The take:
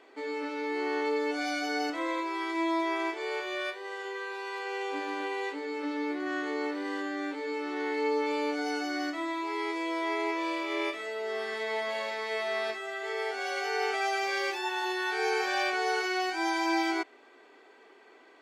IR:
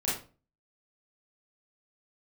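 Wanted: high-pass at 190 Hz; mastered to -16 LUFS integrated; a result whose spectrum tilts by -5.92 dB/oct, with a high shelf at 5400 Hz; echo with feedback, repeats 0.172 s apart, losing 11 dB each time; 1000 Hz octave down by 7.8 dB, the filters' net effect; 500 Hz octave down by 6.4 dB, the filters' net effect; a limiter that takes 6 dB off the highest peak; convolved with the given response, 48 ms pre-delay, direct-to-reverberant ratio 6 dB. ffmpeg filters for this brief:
-filter_complex "[0:a]highpass=190,equalizer=f=500:t=o:g=-6.5,equalizer=f=1k:t=o:g=-7.5,highshelf=f=5.4k:g=-4,alimiter=level_in=3.5dB:limit=-24dB:level=0:latency=1,volume=-3.5dB,aecho=1:1:172|344|516:0.282|0.0789|0.0221,asplit=2[a][b];[1:a]atrim=start_sample=2205,adelay=48[c];[b][c]afir=irnorm=-1:irlink=0,volume=-13.5dB[d];[a][d]amix=inputs=2:normalize=0,volume=19dB"

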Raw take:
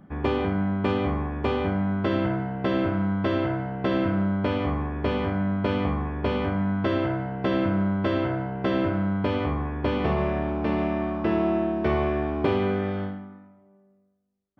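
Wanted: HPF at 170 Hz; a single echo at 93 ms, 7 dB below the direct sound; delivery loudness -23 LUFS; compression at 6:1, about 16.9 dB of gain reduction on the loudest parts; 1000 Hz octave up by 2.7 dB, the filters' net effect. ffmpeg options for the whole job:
-af "highpass=170,equalizer=f=1k:t=o:g=3.5,acompressor=threshold=-39dB:ratio=6,aecho=1:1:93:0.447,volume=17.5dB"

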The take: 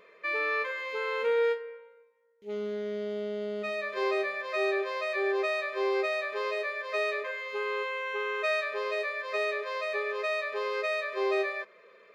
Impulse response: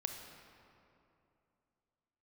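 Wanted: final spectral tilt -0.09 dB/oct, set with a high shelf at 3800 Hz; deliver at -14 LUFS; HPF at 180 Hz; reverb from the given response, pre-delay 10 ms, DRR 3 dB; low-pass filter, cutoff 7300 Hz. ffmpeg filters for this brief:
-filter_complex "[0:a]highpass=180,lowpass=7.3k,highshelf=f=3.8k:g=9,asplit=2[a][b];[1:a]atrim=start_sample=2205,adelay=10[c];[b][c]afir=irnorm=-1:irlink=0,volume=-3dB[d];[a][d]amix=inputs=2:normalize=0,volume=13.5dB"

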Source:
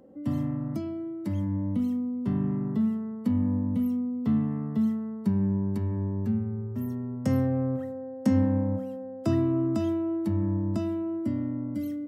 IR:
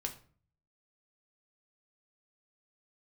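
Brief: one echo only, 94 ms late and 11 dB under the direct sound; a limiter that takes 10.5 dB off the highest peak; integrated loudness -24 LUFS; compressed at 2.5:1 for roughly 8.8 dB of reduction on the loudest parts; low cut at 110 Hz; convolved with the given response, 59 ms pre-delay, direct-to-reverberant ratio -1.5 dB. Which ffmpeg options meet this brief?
-filter_complex "[0:a]highpass=110,acompressor=threshold=-34dB:ratio=2.5,alimiter=level_in=8dB:limit=-24dB:level=0:latency=1,volume=-8dB,aecho=1:1:94:0.282,asplit=2[a][b];[1:a]atrim=start_sample=2205,adelay=59[c];[b][c]afir=irnorm=-1:irlink=0,volume=1.5dB[d];[a][d]amix=inputs=2:normalize=0,volume=10dB"

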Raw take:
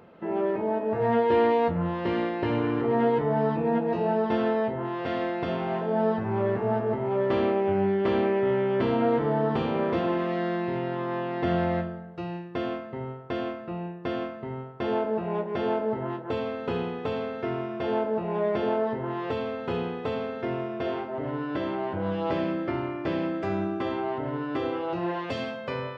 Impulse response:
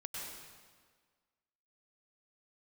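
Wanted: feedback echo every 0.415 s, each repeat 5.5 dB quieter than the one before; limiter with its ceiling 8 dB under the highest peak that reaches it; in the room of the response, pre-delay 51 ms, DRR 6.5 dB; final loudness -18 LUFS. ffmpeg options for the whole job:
-filter_complex "[0:a]alimiter=limit=-20dB:level=0:latency=1,aecho=1:1:415|830|1245|1660|2075|2490|2905:0.531|0.281|0.149|0.079|0.0419|0.0222|0.0118,asplit=2[a][b];[1:a]atrim=start_sample=2205,adelay=51[c];[b][c]afir=irnorm=-1:irlink=0,volume=-6dB[d];[a][d]amix=inputs=2:normalize=0,volume=10dB"

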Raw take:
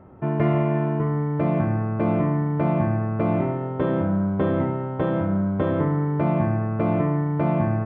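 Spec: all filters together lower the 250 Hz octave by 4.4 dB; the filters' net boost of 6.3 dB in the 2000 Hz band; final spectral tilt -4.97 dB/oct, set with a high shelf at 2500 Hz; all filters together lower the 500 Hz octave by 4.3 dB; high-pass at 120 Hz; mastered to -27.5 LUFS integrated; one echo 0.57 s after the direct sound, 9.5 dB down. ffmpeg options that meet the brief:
-af "highpass=120,equalizer=f=250:t=o:g=-4.5,equalizer=f=500:t=o:g=-5.5,equalizer=f=2k:t=o:g=5.5,highshelf=f=2.5k:g=6.5,aecho=1:1:570:0.335,volume=-1.5dB"

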